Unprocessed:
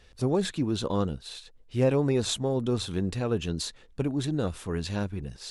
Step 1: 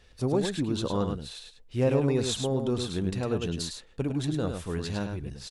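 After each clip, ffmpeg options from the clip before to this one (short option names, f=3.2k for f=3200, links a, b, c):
-af "aecho=1:1:104:0.501,volume=-1.5dB"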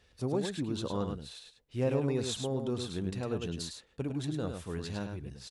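-af "highpass=49,volume=-5.5dB"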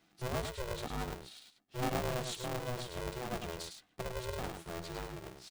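-af "aeval=exprs='val(0)*sgn(sin(2*PI*250*n/s))':c=same,volume=-5dB"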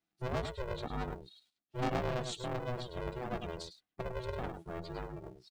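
-af "afftdn=nr=20:nf=-47,volume=1dB"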